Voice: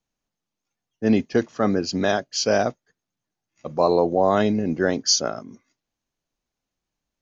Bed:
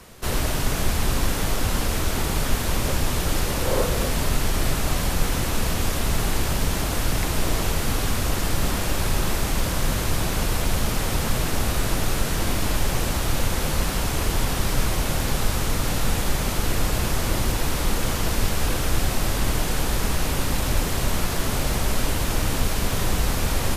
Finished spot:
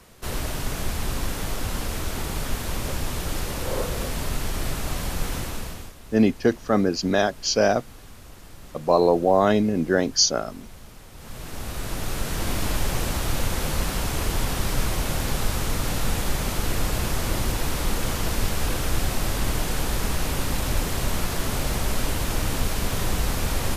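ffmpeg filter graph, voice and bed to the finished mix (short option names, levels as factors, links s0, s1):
-filter_complex "[0:a]adelay=5100,volume=1.06[s0];[1:a]volume=5.31,afade=t=out:st=5.36:d=0.58:silence=0.149624,afade=t=in:st=11.14:d=1.47:silence=0.105925[s1];[s0][s1]amix=inputs=2:normalize=0"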